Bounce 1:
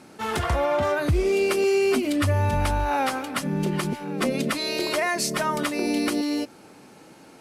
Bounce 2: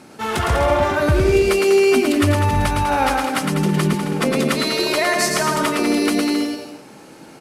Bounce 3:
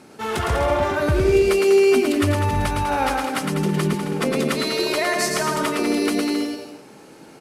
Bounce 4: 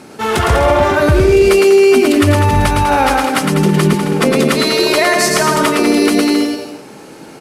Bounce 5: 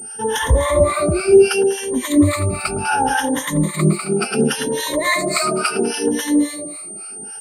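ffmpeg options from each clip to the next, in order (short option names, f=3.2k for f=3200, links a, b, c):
-af "aecho=1:1:110|198|268.4|324.7|369.8:0.631|0.398|0.251|0.158|0.1,volume=4.5dB"
-af "equalizer=f=420:t=o:w=0.28:g=4.5,volume=-3.5dB"
-af "alimiter=level_in=10.5dB:limit=-1dB:release=50:level=0:latency=1,volume=-1dB"
-filter_complex "[0:a]afftfilt=real='re*pow(10,22/40*sin(2*PI*(1.1*log(max(b,1)*sr/1024/100)/log(2)-(0.69)*(pts-256)/sr)))':imag='im*pow(10,22/40*sin(2*PI*(1.1*log(max(b,1)*sr/1024/100)/log(2)-(0.69)*(pts-256)/sr)))':win_size=1024:overlap=0.75,acrossover=split=790[a][b];[a]aeval=exprs='val(0)*(1-1/2+1/2*cos(2*PI*3.6*n/s))':c=same[c];[b]aeval=exprs='val(0)*(1-1/2-1/2*cos(2*PI*3.6*n/s))':c=same[d];[c][d]amix=inputs=2:normalize=0,aeval=exprs='val(0)+0.0708*sin(2*PI*8800*n/s)':c=same,volume=-7dB"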